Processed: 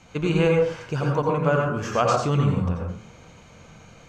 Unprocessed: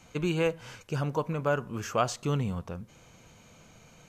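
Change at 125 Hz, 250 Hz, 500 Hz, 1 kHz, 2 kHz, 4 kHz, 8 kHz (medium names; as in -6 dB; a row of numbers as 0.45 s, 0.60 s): +9.0 dB, +8.0 dB, +8.5 dB, +8.0 dB, +6.5 dB, +5.0 dB, +2.0 dB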